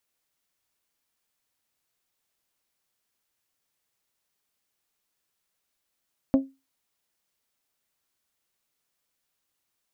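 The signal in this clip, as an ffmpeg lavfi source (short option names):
-f lavfi -i "aevalsrc='0.224*pow(10,-3*t/0.25)*sin(2*PI*269*t)+0.0891*pow(10,-3*t/0.154)*sin(2*PI*538*t)+0.0355*pow(10,-3*t/0.135)*sin(2*PI*645.6*t)+0.0141*pow(10,-3*t/0.116)*sin(2*PI*807*t)+0.00562*pow(10,-3*t/0.095)*sin(2*PI*1076*t)':d=0.89:s=44100"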